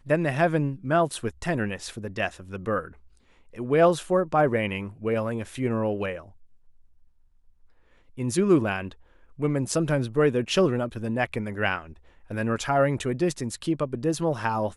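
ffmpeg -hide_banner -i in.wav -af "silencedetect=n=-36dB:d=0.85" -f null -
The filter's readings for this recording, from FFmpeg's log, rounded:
silence_start: 6.21
silence_end: 8.18 | silence_duration: 1.96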